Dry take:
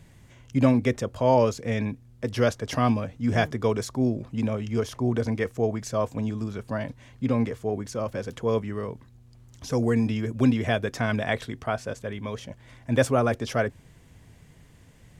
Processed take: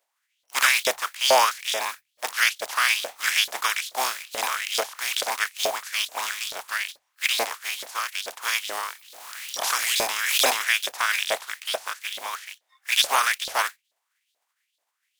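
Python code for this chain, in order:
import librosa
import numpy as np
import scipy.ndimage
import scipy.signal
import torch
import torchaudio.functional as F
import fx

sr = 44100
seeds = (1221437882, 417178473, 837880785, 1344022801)

y = fx.spec_flatten(x, sr, power=0.32)
y = fx.noise_reduce_blind(y, sr, reduce_db=25)
y = fx.filter_lfo_highpass(y, sr, shape='saw_up', hz=2.3, low_hz=550.0, high_hz=4000.0, q=3.8)
y = fx.hum_notches(y, sr, base_hz=50, count=3)
y = fx.pre_swell(y, sr, db_per_s=39.0, at=(8.64, 10.44), fade=0.02)
y = y * librosa.db_to_amplitude(-2.0)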